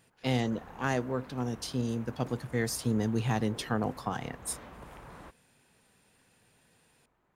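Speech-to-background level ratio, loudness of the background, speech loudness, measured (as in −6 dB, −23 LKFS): 17.5 dB, −50.0 LKFS, −32.5 LKFS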